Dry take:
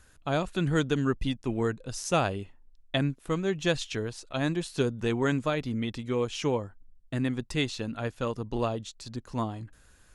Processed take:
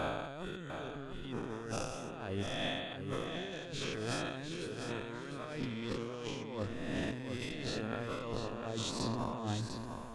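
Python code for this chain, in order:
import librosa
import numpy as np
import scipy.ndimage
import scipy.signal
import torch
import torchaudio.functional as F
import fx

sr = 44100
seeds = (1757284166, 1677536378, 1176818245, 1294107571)

y = fx.spec_swells(x, sr, rise_s=1.43)
y = fx.over_compress(y, sr, threshold_db=-35.0, ratio=-1.0)
y = fx.high_shelf(y, sr, hz=7300.0, db=-6.5)
y = fx.echo_feedback(y, sr, ms=699, feedback_pct=31, wet_db=-7.0)
y = y * librosa.db_to_amplitude(-6.0)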